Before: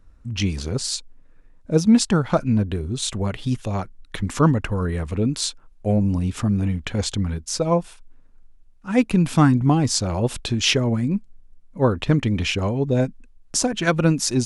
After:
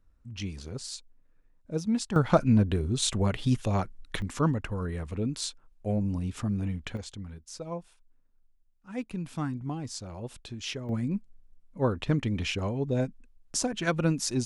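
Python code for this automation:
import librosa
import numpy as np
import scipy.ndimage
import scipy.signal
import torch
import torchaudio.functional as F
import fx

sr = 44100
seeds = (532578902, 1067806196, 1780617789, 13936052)

y = fx.gain(x, sr, db=fx.steps((0.0, -13.0), (2.16, -2.0), (4.22, -9.0), (6.97, -17.0), (10.89, -8.0)))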